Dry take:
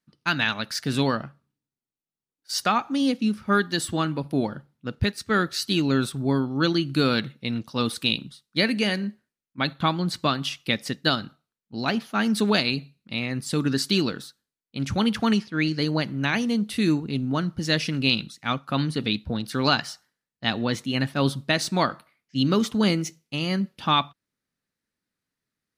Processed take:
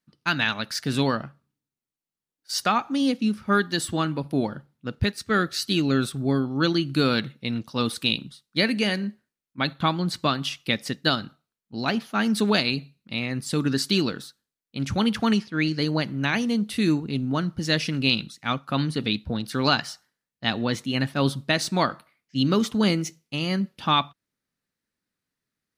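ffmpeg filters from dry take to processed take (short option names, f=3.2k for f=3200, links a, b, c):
-filter_complex "[0:a]asettb=1/sr,asplit=3[a][b][c];[a]atrim=end=5.294[d];[b]atrim=start=5.29:end=6.45,asetpts=PTS-STARTPTS,afade=t=in:d=0.004:c=qsin,afade=t=out:st=1.156:d=0.004:c=qsin,asuperstop=centerf=930:order=4:qfactor=6.6[e];[c]atrim=start=6.446[f];[d][e]acrossfade=d=0.004:c1=hsin:c2=qsin[g];[g][f]acrossfade=d=0.004:c1=qsin:c2=hsin"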